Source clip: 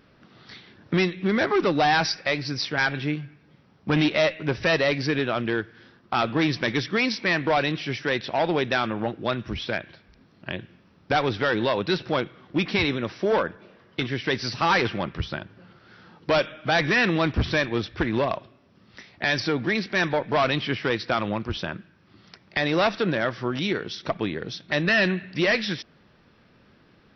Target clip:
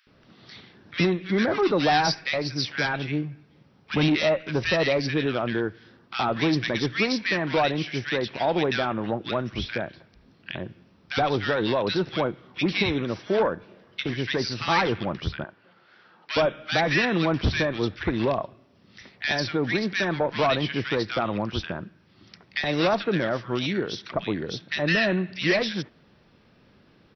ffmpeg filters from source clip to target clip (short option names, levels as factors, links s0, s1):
-filter_complex "[0:a]asettb=1/sr,asplit=3[s0][s1][s2];[s0]atrim=end=15.374[s3];[s1]atrim=start=15.37:end=16.3,asetpts=PTS-STARTPTS,afade=t=in:d=0.004:c=qsin,afade=t=out:st=0.926:d=0.004:c=qsin,bandpass=f=1500:t=q:w=0.57:csg=0[s4];[s2]atrim=start=16.296[s5];[s3][s4]acrossfade=d=0.004:c1=hsin:c2=qsin[s6];[s6][s5]acrossfade=d=0.004:c1=qsin:c2=hsin,acrossover=split=1500[s7][s8];[s7]adelay=70[s9];[s9][s8]amix=inputs=2:normalize=0"